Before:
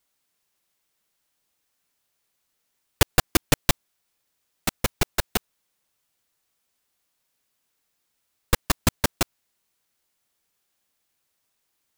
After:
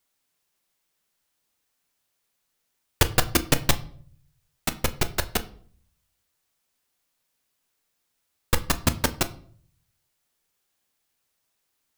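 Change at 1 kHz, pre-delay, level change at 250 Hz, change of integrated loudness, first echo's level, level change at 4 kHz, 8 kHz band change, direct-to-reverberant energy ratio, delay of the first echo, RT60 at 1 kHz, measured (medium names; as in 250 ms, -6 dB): -0.5 dB, 8 ms, -0.5 dB, -0.5 dB, no echo, -0.5 dB, -0.5 dB, 10.0 dB, no echo, 0.50 s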